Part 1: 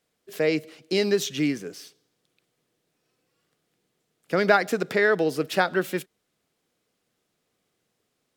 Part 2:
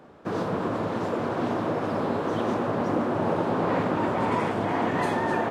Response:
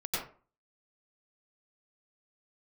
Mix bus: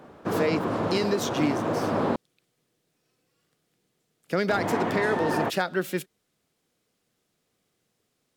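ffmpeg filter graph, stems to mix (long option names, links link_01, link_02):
-filter_complex "[0:a]bass=frequency=250:gain=3,treble=frequency=4000:gain=2,asoftclip=type=hard:threshold=-9dB,volume=-0.5dB[link_01];[1:a]volume=2dB,asplit=3[link_02][link_03][link_04];[link_02]atrim=end=2.16,asetpts=PTS-STARTPTS,afade=type=out:start_time=2.156:duration=0.004:curve=hsin[link_05];[link_03]atrim=start=2.16:end=4.49,asetpts=PTS-STARTPTS,volume=0[link_06];[link_04]atrim=start=4.49,asetpts=PTS-STARTPTS,afade=type=in:duration=0.004:curve=hsin[link_07];[link_05][link_06][link_07]concat=n=3:v=0:a=1[link_08];[link_01][link_08]amix=inputs=2:normalize=0,alimiter=limit=-14dB:level=0:latency=1:release=462"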